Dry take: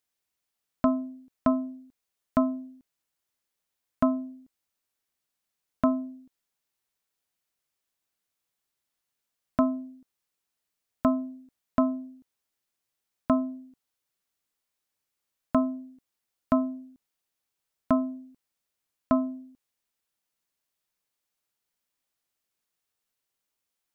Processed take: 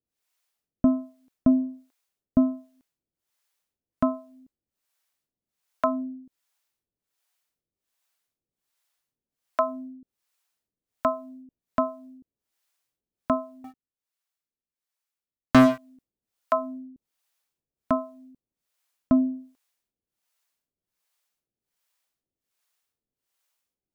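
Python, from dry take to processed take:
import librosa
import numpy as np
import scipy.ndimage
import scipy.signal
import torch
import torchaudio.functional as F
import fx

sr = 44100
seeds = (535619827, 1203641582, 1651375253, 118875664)

y = fx.harmonic_tremolo(x, sr, hz=1.3, depth_pct=100, crossover_hz=510.0)
y = fx.leveller(y, sr, passes=5, at=(13.64, 15.78))
y = F.gain(torch.from_numpy(y), 6.5).numpy()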